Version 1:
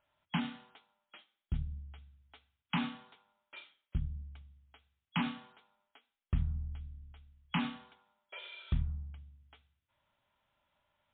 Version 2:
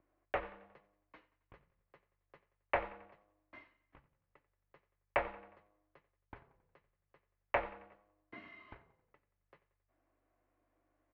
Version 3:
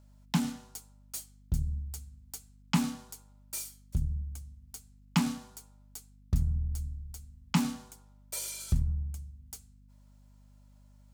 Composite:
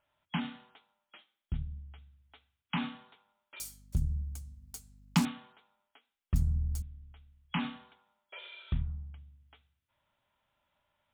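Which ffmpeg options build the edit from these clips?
-filter_complex "[2:a]asplit=2[s0][s1];[0:a]asplit=3[s2][s3][s4];[s2]atrim=end=3.602[s5];[s0]atrim=start=3.598:end=5.252[s6];[s3]atrim=start=5.248:end=6.342[s7];[s1]atrim=start=6.338:end=6.822[s8];[s4]atrim=start=6.818[s9];[s5][s6]acrossfade=d=0.004:c1=hsin:c2=hsin[s10];[s10][s7]acrossfade=d=0.004:c1=hsin:c2=hsin[s11];[s11][s8]acrossfade=d=0.004:c1=hsin:c2=hsin[s12];[s12][s9]acrossfade=d=0.004:c1=hsin:c2=hsin"

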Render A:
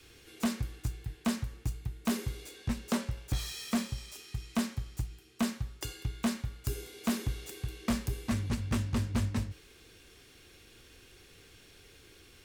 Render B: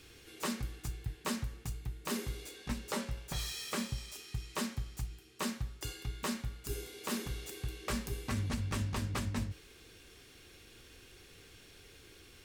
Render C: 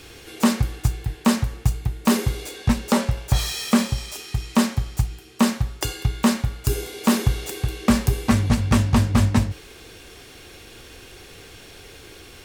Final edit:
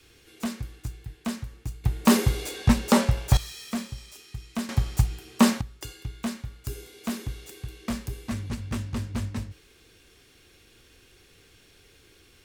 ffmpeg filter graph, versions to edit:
-filter_complex "[2:a]asplit=2[s0][s1];[0:a]asplit=3[s2][s3][s4];[s2]atrim=end=1.842[s5];[s0]atrim=start=1.838:end=3.372[s6];[s3]atrim=start=3.368:end=4.692[s7];[s1]atrim=start=4.688:end=5.612[s8];[s4]atrim=start=5.608[s9];[s5][s6]acrossfade=d=0.004:c1=hsin:c2=hsin[s10];[s10][s7]acrossfade=d=0.004:c1=hsin:c2=hsin[s11];[s11][s8]acrossfade=d=0.004:c1=hsin:c2=hsin[s12];[s12][s9]acrossfade=d=0.004:c1=hsin:c2=hsin"

